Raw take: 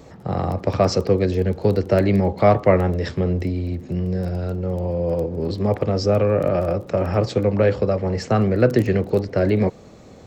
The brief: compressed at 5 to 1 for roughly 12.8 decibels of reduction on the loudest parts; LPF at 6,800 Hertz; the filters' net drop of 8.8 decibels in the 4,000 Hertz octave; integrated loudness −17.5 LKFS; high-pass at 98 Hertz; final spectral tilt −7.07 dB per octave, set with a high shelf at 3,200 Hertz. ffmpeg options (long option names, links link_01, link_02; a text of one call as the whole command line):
ffmpeg -i in.wav -af "highpass=98,lowpass=6800,highshelf=frequency=3200:gain=-5.5,equalizer=frequency=4000:width_type=o:gain=-6,acompressor=threshold=-25dB:ratio=5,volume=12dB" out.wav